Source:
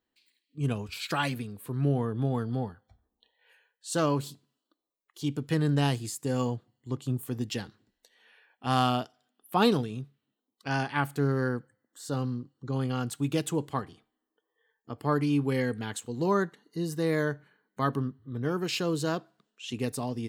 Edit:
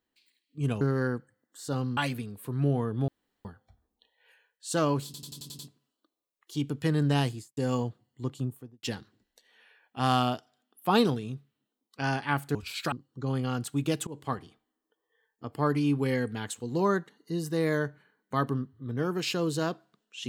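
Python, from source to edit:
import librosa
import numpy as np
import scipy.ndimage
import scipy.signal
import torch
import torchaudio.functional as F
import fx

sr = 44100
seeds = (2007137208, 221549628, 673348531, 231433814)

y = fx.studio_fade_out(x, sr, start_s=5.95, length_s=0.29)
y = fx.studio_fade_out(y, sr, start_s=6.95, length_s=0.55)
y = fx.edit(y, sr, fx.swap(start_s=0.81, length_s=0.37, other_s=11.22, other_length_s=1.16),
    fx.room_tone_fill(start_s=2.29, length_s=0.37),
    fx.stutter(start_s=4.26, slice_s=0.09, count=7),
    fx.fade_in_from(start_s=13.53, length_s=0.25, floor_db=-22.5), tone=tone)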